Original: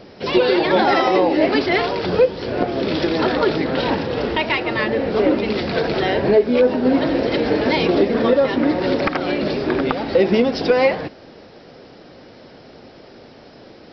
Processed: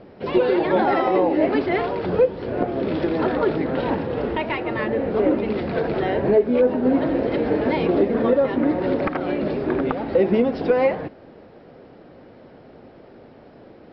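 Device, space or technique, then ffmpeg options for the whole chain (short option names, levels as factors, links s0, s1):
phone in a pocket: -af "lowpass=3200,highshelf=f=2000:g=-9.5,volume=0.794"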